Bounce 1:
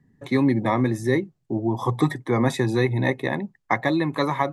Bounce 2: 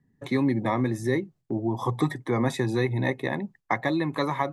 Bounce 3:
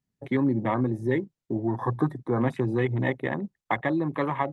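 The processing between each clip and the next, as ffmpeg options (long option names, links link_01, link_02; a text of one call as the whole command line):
ffmpeg -i in.wav -filter_complex "[0:a]agate=range=-7dB:threshold=-47dB:ratio=16:detection=peak,asplit=2[link_01][link_02];[link_02]acompressor=threshold=-29dB:ratio=6,volume=0dB[link_03];[link_01][link_03]amix=inputs=2:normalize=0,volume=-6dB" out.wav
ffmpeg -i in.wav -af "afwtdn=0.02" -ar 48000 -c:a libopus -b:a 32k out.opus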